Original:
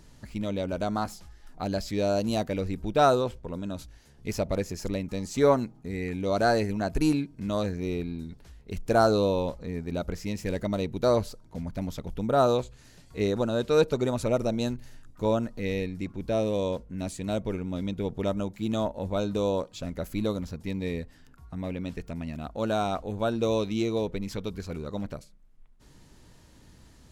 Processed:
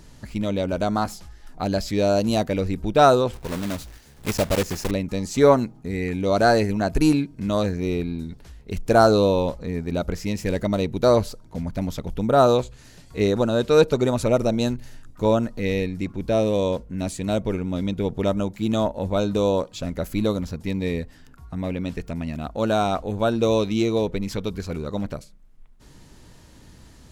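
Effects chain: 3.33–4.92 block floating point 3-bit; gain +6 dB

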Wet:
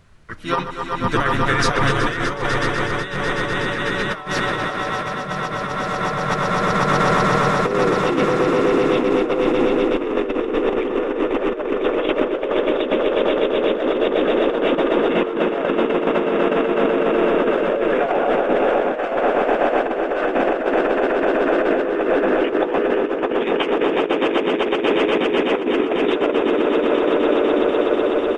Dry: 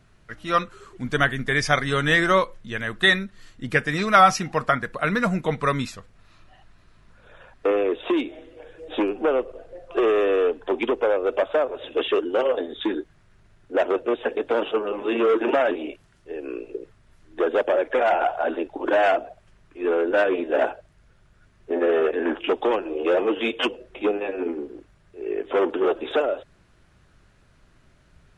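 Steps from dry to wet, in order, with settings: swelling echo 0.124 s, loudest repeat 8, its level -6.5 dB; harmoniser -5 st -9 dB, -4 st -4 dB; negative-ratio compressor -18 dBFS, ratio -0.5

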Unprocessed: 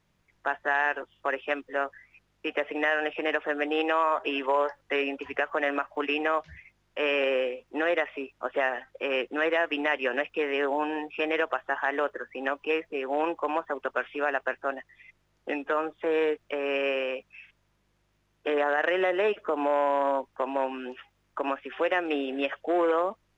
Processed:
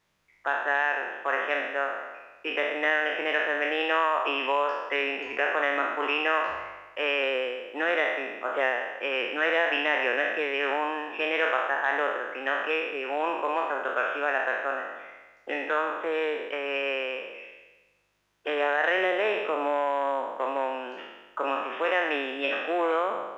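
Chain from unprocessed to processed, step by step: spectral trails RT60 1.20 s; low shelf 310 Hz -11.5 dB

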